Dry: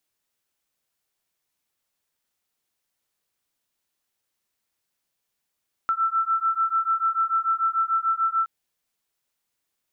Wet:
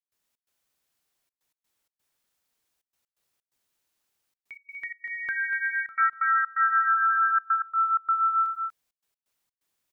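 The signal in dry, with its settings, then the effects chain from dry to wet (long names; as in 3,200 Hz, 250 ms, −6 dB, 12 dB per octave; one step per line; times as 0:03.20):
two tones that beat 1,330 Hz, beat 6.8 Hz, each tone −23.5 dBFS 2.57 s
delay with pitch and tempo change per echo 335 ms, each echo +3 semitones, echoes 3, each echo −6 dB
on a send: single-tap delay 242 ms −7.5 dB
on the sum: gate pattern ".xx.xxxxxxx.x" 128 BPM −24 dB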